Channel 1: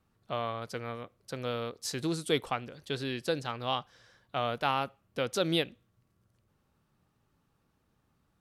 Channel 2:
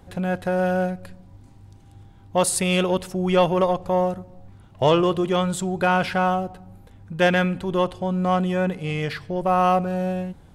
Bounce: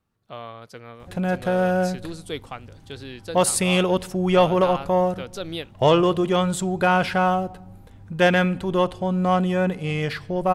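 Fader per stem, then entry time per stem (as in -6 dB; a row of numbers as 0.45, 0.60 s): -3.0, +1.0 dB; 0.00, 1.00 s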